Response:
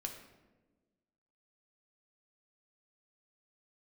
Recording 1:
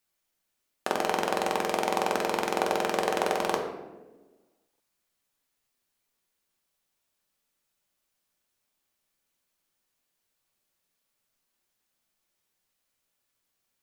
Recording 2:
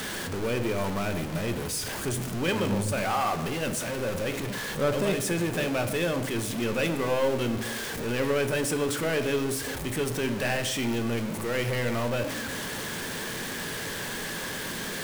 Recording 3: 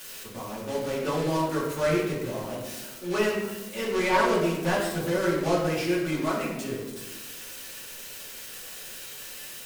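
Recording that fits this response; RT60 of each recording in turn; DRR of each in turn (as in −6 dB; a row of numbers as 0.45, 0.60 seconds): 1; 1.2, 1.3, 1.2 seconds; 2.5, 7.5, −5.0 decibels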